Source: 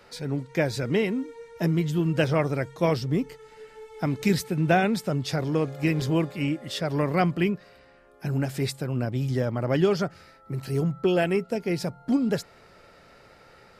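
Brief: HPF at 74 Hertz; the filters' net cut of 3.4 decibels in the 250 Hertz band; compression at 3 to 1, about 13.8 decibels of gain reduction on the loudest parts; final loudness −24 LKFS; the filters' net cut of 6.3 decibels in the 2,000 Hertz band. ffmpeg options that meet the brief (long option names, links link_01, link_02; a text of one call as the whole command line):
ffmpeg -i in.wav -af "highpass=74,equalizer=frequency=250:width_type=o:gain=-5,equalizer=frequency=2000:width_type=o:gain=-8.5,acompressor=threshold=-39dB:ratio=3,volume=16dB" out.wav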